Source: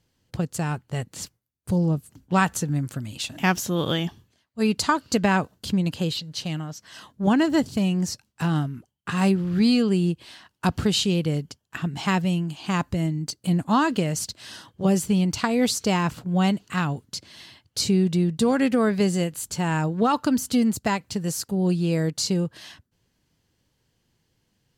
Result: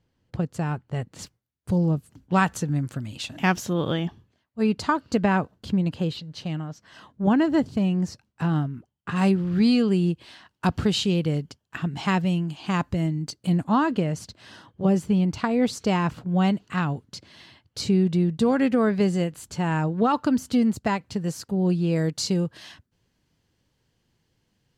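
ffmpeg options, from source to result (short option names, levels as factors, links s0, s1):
-af "asetnsamples=n=441:p=0,asendcmd='1.19 lowpass f 4000;3.73 lowpass f 1700;9.16 lowpass f 4100;13.69 lowpass f 1600;15.73 lowpass f 2600;21.96 lowpass f 6300',lowpass=f=1800:p=1"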